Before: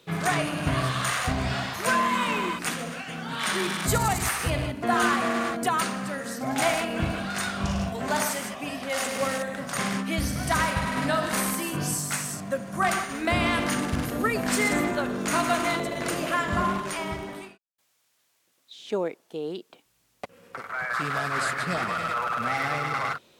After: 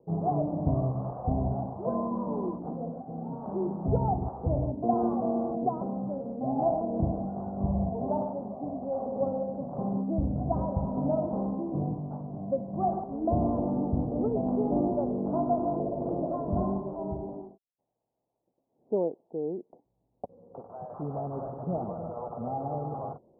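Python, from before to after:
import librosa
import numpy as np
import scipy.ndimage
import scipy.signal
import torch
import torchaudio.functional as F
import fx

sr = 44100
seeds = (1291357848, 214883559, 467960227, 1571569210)

y = scipy.signal.sosfilt(scipy.signal.butter(8, 840.0, 'lowpass', fs=sr, output='sos'), x)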